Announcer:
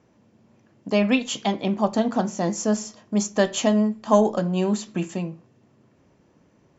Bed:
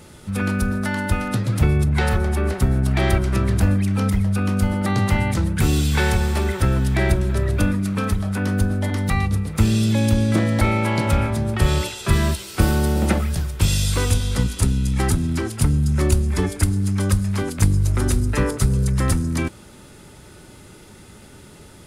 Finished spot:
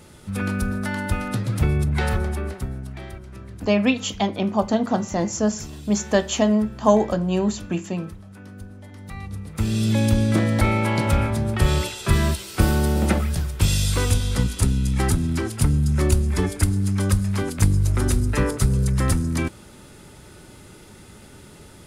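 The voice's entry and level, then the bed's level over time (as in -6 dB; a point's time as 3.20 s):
2.75 s, +1.0 dB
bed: 2.21 s -3 dB
3.14 s -19.5 dB
8.91 s -19.5 dB
9.92 s -1 dB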